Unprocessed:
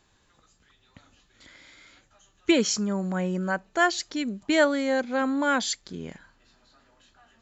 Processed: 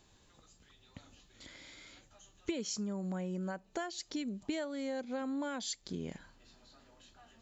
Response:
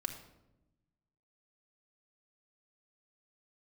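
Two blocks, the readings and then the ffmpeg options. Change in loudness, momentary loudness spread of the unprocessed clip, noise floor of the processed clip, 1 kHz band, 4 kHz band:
−13.5 dB, 10 LU, −66 dBFS, −16.5 dB, −12.5 dB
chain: -af "acompressor=threshold=-36dB:ratio=6,equalizer=frequency=1500:width_type=o:width=1.3:gain=-6.5,volume=1dB"

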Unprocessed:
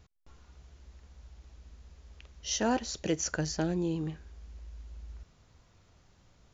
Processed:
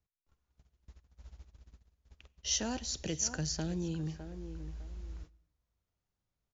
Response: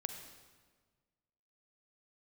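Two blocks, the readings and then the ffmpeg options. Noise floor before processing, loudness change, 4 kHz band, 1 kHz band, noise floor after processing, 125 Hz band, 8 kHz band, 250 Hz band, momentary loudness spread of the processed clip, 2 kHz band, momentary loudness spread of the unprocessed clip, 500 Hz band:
−64 dBFS, −4.5 dB, +0.5 dB, −10.0 dB, below −85 dBFS, −2.0 dB, can't be measured, −6.0 dB, 17 LU, −6.5 dB, 19 LU, −8.5 dB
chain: -filter_complex "[0:a]asplit=2[link_01][link_02];[link_02]adelay=606,lowpass=frequency=2000:poles=1,volume=-15dB,asplit=2[link_03][link_04];[link_04]adelay=606,lowpass=frequency=2000:poles=1,volume=0.18[link_05];[link_01][link_03][link_05]amix=inputs=3:normalize=0,agate=range=-27dB:threshold=-49dB:ratio=16:detection=peak,acrossover=split=160|3000[link_06][link_07][link_08];[link_07]acompressor=threshold=-48dB:ratio=2[link_09];[link_06][link_09][link_08]amix=inputs=3:normalize=0,asplit=2[link_10][link_11];[1:a]atrim=start_sample=2205,afade=type=out:start_time=0.33:duration=0.01,atrim=end_sample=14994[link_12];[link_11][link_12]afir=irnorm=-1:irlink=0,volume=-13.5dB[link_13];[link_10][link_13]amix=inputs=2:normalize=0"

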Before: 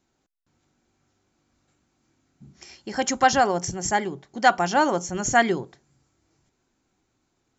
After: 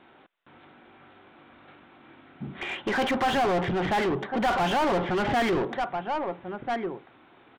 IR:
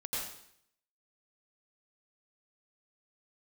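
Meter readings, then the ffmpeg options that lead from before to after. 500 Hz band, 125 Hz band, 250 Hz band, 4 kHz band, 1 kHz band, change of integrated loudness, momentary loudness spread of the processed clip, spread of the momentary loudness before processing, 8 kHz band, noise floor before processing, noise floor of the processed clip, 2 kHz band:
−0.5 dB, +1.5 dB, +0.5 dB, −1.0 dB, −3.5 dB, −4.0 dB, 12 LU, 11 LU, can't be measured, −74 dBFS, −56 dBFS, −4.0 dB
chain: -filter_complex "[0:a]asplit=2[link_01][link_02];[link_02]adelay=1341,volume=-22dB,highshelf=frequency=4000:gain=-30.2[link_03];[link_01][link_03]amix=inputs=2:normalize=0,aresample=8000,asoftclip=type=tanh:threshold=-21.5dB,aresample=44100,acontrast=82,asplit=2[link_04][link_05];[link_05]highpass=frequency=720:poles=1,volume=31dB,asoftclip=type=tanh:threshold=-11dB[link_06];[link_04][link_06]amix=inputs=2:normalize=0,lowpass=frequency=2000:poles=1,volume=-6dB,volume=-7.5dB"

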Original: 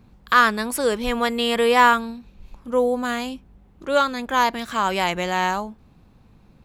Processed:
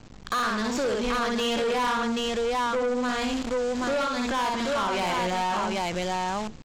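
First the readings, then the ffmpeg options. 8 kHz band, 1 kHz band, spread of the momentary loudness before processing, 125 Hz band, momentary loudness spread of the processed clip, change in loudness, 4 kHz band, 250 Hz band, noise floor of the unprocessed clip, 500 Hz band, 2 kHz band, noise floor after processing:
−2.0 dB, −5.5 dB, 15 LU, −1.0 dB, 3 LU, −6.0 dB, −3.0 dB, −1.5 dB, −53 dBFS, −3.5 dB, −7.5 dB, −44 dBFS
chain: -filter_complex "[0:a]equalizer=frequency=1900:width=4.7:gain=-3,asplit=2[link_01][link_02];[link_02]aecho=0:1:61|107|183|782:0.631|0.126|0.112|0.562[link_03];[link_01][link_03]amix=inputs=2:normalize=0,acontrast=23,aresample=16000,acrusher=bits=6:dc=4:mix=0:aa=0.000001,aresample=44100,acompressor=threshold=-24dB:ratio=3,asoftclip=type=tanh:threshold=-25.5dB,volume=3dB"

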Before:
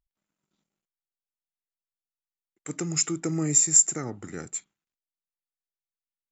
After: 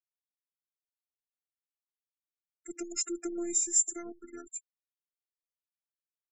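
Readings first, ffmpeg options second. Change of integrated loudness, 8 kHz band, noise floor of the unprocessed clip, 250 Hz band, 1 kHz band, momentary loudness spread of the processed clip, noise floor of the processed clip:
−8.0 dB, can't be measured, below −85 dBFS, −7.5 dB, −10.0 dB, 20 LU, below −85 dBFS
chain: -af "afftfilt=real='hypot(re,im)*cos(PI*b)':imag='0':win_size=512:overlap=0.75,afftfilt=real='re*gte(hypot(re,im),0.0141)':imag='im*gte(hypot(re,im),0.0141)':win_size=1024:overlap=0.75,volume=-4.5dB"

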